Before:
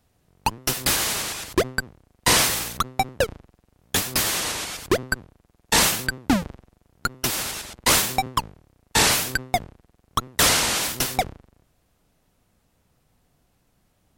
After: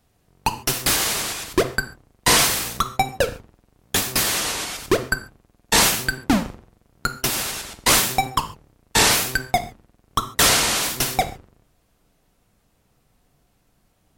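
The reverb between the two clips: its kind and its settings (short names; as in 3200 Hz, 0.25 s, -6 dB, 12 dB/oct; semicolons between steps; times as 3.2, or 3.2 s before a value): non-linear reverb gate 0.17 s falling, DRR 8 dB; gain +1.5 dB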